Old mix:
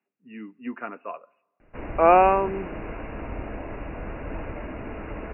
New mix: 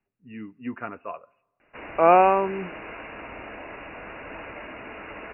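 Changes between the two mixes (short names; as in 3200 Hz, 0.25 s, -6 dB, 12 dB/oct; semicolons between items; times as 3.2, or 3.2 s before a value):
speech: remove HPF 190 Hz 24 dB/oct; background: add tilt +4 dB/oct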